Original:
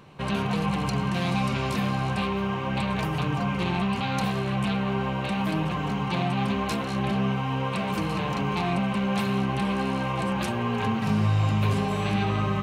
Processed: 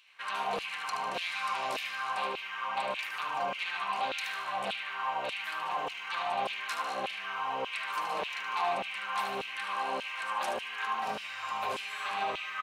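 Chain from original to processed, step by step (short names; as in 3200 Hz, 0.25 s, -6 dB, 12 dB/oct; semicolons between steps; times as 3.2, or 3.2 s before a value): feedback echo 75 ms, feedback 46%, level -7 dB; LFO high-pass saw down 1.7 Hz 510–2900 Hz; gain -6 dB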